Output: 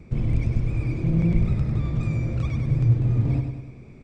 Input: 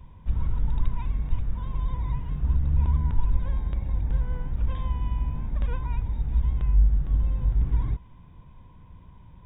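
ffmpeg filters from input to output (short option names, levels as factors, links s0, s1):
-af "highshelf=f=2200:g=-7,aecho=1:1:232|464|696|928|1160|1392|1624:0.473|0.251|0.133|0.0704|0.0373|0.0198|0.0105,asetrate=103194,aresample=44100"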